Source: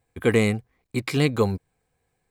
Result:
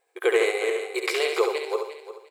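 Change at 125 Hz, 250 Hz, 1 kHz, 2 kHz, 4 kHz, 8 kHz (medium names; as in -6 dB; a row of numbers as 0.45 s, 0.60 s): under -40 dB, -10.5 dB, +3.0 dB, +2.5 dB, +2.5 dB, +1.5 dB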